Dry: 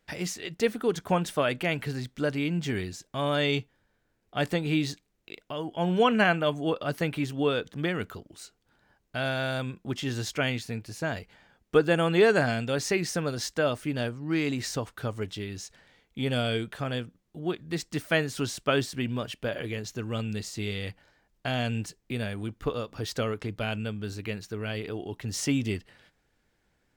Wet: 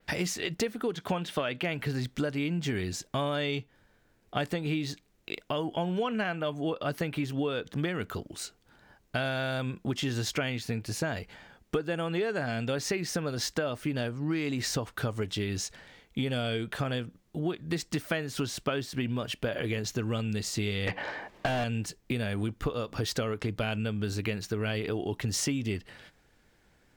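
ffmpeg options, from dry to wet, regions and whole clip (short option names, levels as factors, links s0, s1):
-filter_complex "[0:a]asettb=1/sr,asplit=3[s0][s1][s2];[s0]atrim=end=0.954[s3];[s1]atrim=start=0.95:end=1.63,asetpts=PTS-STARTPTS,afade=t=in:d=0.004:c=qsin,afade=t=out:st=0.676:d=0.004:c=qsin,highpass=93,equalizer=f=3400:t=o:w=1.1:g=7,acrossover=split=3300[s4][s5];[s5]acompressor=threshold=0.01:ratio=4:attack=1:release=60[s6];[s4][s6]amix=inputs=2:normalize=0[s7];[s2]atrim=start=1.626[s8];[s3][s7]acrossfade=d=0.004:c1=hsin:c2=qsin[s9];[s9][s8]acrossfade=d=0.004:c1=qsin:c2=hsin,asettb=1/sr,asplit=3[s10][s11][s12];[s10]atrim=end=20.874[s13];[s11]atrim=start=20.87:end=21.64,asetpts=PTS-STARTPTS,afade=t=in:d=0.004:c=qsin,afade=t=out:st=0.766:d=0.004:c=qsin,bass=f=250:g=-2,treble=f=4000:g=-7,bandreject=f=1400:w=7.2,asplit=2[s14][s15];[s15]highpass=f=720:p=1,volume=39.8,asoftclip=type=tanh:threshold=0.126[s16];[s14][s16]amix=inputs=2:normalize=0,lowpass=f=1500:p=1,volume=0.501[s17];[s12]atrim=start=21.636[s18];[s13][s17]acrossfade=d=0.004:c1=hsin:c2=qsin[s19];[s19][s18]acrossfade=d=0.004:c1=qsin:c2=hsin,acontrast=53,adynamicequalizer=threshold=0.00562:dfrequency=8400:dqfactor=0.95:tfrequency=8400:tqfactor=0.95:attack=5:release=100:ratio=0.375:range=2.5:mode=cutabove:tftype=bell,acompressor=threshold=0.0398:ratio=12,volume=1.12"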